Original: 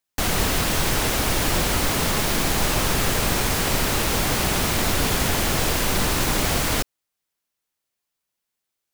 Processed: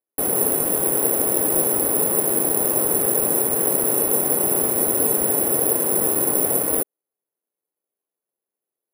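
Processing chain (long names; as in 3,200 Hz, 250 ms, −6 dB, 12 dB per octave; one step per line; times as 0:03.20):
resonant band-pass 430 Hz, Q 2
bad sample-rate conversion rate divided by 4×, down filtered, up zero stuff
level +6 dB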